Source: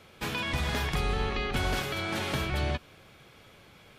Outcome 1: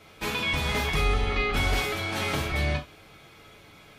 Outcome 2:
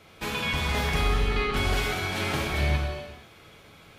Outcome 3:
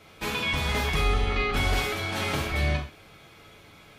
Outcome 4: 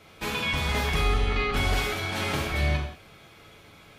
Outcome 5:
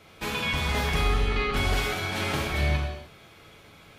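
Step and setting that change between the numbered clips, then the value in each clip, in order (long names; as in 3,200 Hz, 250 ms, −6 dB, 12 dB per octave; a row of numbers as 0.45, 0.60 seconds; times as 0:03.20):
reverb whose tail is shaped and stops, gate: 100, 490, 150, 220, 330 milliseconds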